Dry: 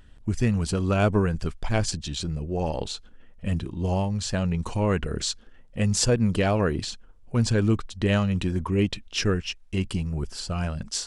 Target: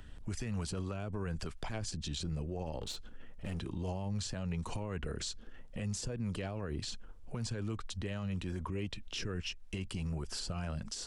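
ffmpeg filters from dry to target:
ffmpeg -i in.wav -filter_complex "[0:a]acrossover=split=120|480[link_01][link_02][link_03];[link_01]acompressor=threshold=-37dB:ratio=4[link_04];[link_02]acompressor=threshold=-36dB:ratio=4[link_05];[link_03]acompressor=threshold=-38dB:ratio=4[link_06];[link_04][link_05][link_06]amix=inputs=3:normalize=0,asettb=1/sr,asplit=3[link_07][link_08][link_09];[link_07]atrim=end=2.804[link_10];[link_08]atrim=start=2.8:end=3.59,asetpts=PTS-STARTPTS,afade=type=in:duration=0.004:curve=qsin,afade=type=out:start_time=0.786:duration=0.004:curve=qsin,aeval=exprs='clip(val(0),-1,0.0119)':channel_layout=same[link_11];[link_09]atrim=start=3.586[link_12];[link_10][link_11]acrossfade=duration=0.004:curve1=hsin:curve2=qsin[link_13];[link_13][link_12]acrossfade=duration=0.004:curve1=qsin:curve2=hsin,alimiter=level_in=7dB:limit=-24dB:level=0:latency=1:release=85,volume=-7dB,volume=1.5dB" out.wav

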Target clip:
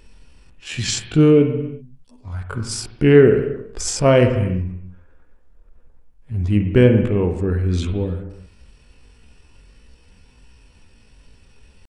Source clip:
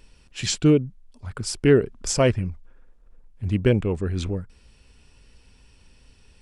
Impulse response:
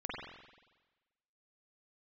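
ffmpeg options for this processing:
-filter_complex "[0:a]atempo=0.54,asplit=2[link_01][link_02];[1:a]atrim=start_sample=2205,afade=type=out:start_time=0.44:duration=0.01,atrim=end_sample=19845,lowpass=3000[link_03];[link_02][link_03]afir=irnorm=-1:irlink=0,volume=-5.5dB[link_04];[link_01][link_04]amix=inputs=2:normalize=0,volume=2dB"

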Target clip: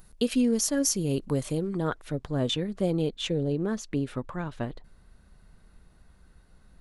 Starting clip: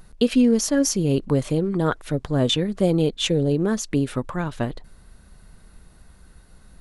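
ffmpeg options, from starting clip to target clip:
ffmpeg -i in.wav -af "asetnsamples=nb_out_samples=441:pad=0,asendcmd='1.79 highshelf g -2.5;3.21 highshelf g -9',highshelf=frequency=6900:gain=10.5,volume=-7dB" out.wav

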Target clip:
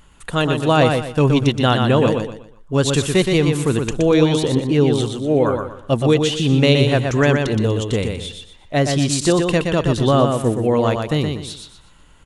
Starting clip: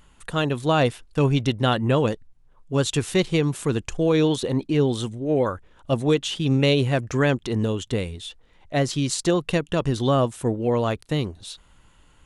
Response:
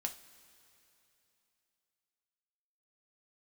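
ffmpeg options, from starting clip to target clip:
-af "aecho=1:1:121|242|363|484:0.562|0.174|0.054|0.0168,volume=4.5dB"

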